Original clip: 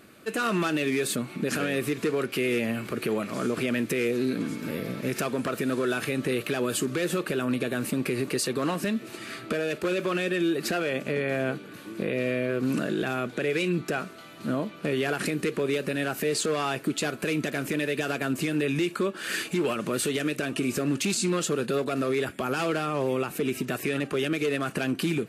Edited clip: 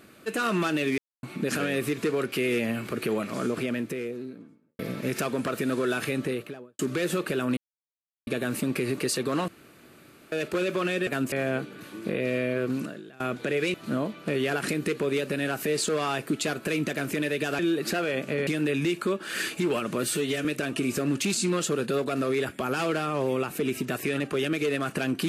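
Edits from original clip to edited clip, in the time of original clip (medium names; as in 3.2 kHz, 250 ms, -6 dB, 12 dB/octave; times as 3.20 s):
0.98–1.23 s: mute
3.26–4.79 s: studio fade out
6.10–6.79 s: studio fade out
7.57 s: insert silence 0.70 s
8.78–9.62 s: room tone
10.37–11.25 s: swap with 18.16–18.41 s
12.59–13.13 s: fade out quadratic, to -22.5 dB
13.67–14.31 s: delete
19.97–20.25 s: stretch 1.5×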